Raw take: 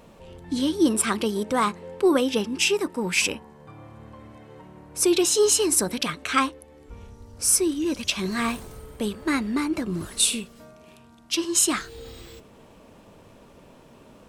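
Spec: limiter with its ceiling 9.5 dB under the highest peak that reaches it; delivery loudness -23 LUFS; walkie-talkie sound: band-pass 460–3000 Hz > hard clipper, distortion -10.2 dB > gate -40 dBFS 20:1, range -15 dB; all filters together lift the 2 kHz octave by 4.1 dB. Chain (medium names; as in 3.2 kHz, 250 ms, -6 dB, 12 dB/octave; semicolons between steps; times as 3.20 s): peaking EQ 2 kHz +7 dB; peak limiter -12.5 dBFS; band-pass 460–3000 Hz; hard clipper -24.5 dBFS; gate -40 dBFS 20:1, range -15 dB; trim +8 dB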